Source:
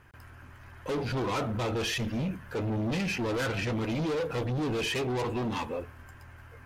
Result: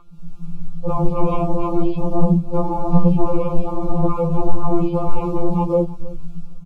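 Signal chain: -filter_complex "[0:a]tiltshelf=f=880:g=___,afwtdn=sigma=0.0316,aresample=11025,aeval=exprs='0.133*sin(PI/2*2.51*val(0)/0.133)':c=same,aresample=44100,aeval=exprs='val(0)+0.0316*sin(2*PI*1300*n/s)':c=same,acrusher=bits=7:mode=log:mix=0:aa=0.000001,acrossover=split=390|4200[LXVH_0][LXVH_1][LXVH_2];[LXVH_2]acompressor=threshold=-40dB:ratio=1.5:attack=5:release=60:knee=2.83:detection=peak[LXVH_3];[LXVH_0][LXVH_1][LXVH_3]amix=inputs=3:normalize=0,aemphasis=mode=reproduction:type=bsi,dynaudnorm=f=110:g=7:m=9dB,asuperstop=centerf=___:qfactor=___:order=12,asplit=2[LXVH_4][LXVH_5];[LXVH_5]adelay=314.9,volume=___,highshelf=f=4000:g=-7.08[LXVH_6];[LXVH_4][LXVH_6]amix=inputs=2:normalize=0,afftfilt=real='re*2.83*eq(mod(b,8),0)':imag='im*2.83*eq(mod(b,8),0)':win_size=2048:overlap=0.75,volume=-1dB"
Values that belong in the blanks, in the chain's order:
8.5, 1700, 1.8, -20dB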